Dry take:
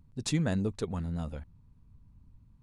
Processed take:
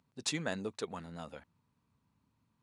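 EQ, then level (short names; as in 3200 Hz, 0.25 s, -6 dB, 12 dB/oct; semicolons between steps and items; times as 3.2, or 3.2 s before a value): weighting filter A; 0.0 dB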